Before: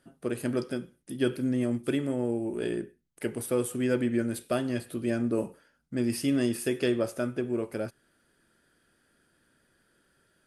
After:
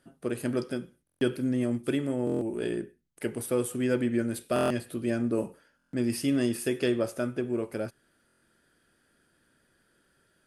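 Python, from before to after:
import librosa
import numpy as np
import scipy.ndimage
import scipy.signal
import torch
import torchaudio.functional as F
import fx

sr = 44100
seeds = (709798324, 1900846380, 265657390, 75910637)

y = fx.buffer_glitch(x, sr, at_s=(1.05, 2.25, 4.54, 5.77, 8.26), block=1024, repeats=6)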